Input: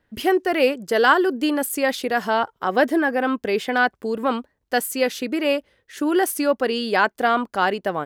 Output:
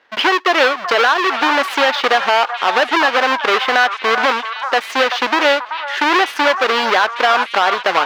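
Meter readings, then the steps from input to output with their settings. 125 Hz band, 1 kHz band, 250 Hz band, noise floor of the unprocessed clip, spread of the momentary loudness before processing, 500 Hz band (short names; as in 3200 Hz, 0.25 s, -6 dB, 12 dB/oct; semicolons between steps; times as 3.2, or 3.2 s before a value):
n/a, +8.5 dB, -2.5 dB, -72 dBFS, 5 LU, +3.0 dB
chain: half-waves squared off; HPF 850 Hz 12 dB/oct; compressor 4:1, threshold -23 dBFS, peak gain reduction 13.5 dB; air absorption 250 m; delay with a stepping band-pass 0.383 s, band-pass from 1100 Hz, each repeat 1.4 oct, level -6.5 dB; maximiser +18 dB; gain -1 dB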